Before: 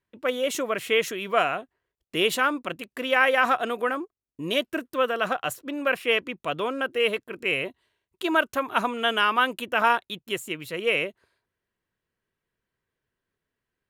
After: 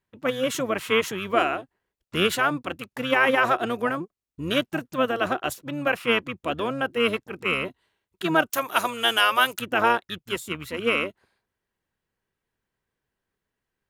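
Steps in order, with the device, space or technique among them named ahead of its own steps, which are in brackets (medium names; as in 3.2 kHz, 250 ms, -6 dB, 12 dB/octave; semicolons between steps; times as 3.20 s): octave pedal (harmony voices -12 st -7 dB); 8.50–9.59 s: RIAA curve recording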